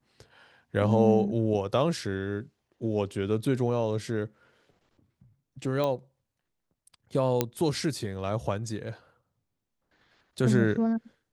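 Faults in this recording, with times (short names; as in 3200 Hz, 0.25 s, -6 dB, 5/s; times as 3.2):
5.84 pop -17 dBFS
7.41 pop -9 dBFS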